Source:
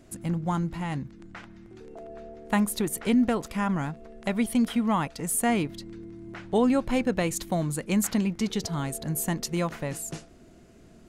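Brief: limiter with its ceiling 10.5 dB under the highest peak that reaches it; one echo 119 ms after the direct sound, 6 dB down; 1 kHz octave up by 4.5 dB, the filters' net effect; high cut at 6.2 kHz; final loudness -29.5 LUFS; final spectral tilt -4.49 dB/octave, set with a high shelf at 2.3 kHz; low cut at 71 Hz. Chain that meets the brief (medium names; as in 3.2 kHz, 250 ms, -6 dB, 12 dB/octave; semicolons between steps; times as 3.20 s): high-pass 71 Hz; low-pass 6.2 kHz; peaking EQ 1 kHz +4.5 dB; treble shelf 2.3 kHz +7.5 dB; peak limiter -19.5 dBFS; delay 119 ms -6 dB; trim -0.5 dB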